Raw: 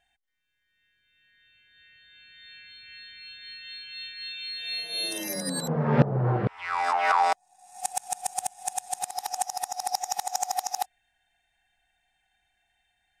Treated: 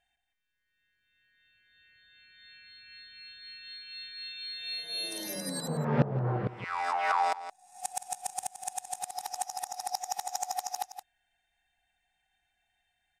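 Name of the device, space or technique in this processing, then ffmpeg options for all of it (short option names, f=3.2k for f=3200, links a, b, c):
ducked delay: -filter_complex "[0:a]asplit=3[a][b][c];[b]adelay=170,volume=-6dB[d];[c]apad=whole_len=589623[e];[d][e]sidechaincompress=threshold=-28dB:ratio=8:attack=6:release=433[f];[a][f]amix=inputs=2:normalize=0,volume=-5.5dB"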